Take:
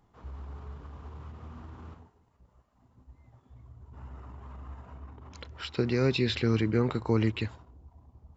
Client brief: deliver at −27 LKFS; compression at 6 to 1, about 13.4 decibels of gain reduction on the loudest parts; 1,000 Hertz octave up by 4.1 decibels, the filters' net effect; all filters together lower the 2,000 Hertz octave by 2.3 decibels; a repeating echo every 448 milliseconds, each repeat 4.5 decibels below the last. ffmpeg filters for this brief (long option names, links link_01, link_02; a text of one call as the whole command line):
ffmpeg -i in.wav -af "equalizer=frequency=1000:width_type=o:gain=6.5,equalizer=frequency=2000:width_type=o:gain=-5,acompressor=threshold=-35dB:ratio=6,aecho=1:1:448|896|1344|1792|2240|2688|3136|3584|4032:0.596|0.357|0.214|0.129|0.0772|0.0463|0.0278|0.0167|0.01,volume=14.5dB" out.wav